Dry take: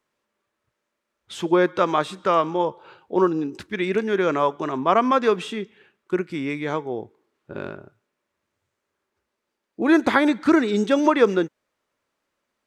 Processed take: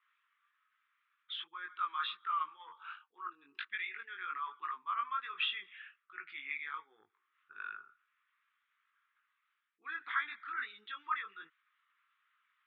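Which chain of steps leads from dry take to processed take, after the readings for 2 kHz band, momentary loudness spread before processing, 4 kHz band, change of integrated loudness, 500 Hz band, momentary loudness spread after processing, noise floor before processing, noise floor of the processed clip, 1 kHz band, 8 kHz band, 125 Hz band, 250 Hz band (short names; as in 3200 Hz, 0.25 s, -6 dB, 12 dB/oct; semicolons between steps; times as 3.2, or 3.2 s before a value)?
-11.0 dB, 15 LU, -7.5 dB, -18.0 dB, under -40 dB, 14 LU, -80 dBFS, -82 dBFS, -15.0 dB, n/a, under -40 dB, under -40 dB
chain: formant sharpening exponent 1.5; reverse; compressor 5:1, threshold -33 dBFS, peak gain reduction 19.5 dB; reverse; chorus 1.3 Hz, delay 18.5 ms, depth 3.2 ms; elliptic band-pass 1200–3500 Hz, stop band 40 dB; gain +8.5 dB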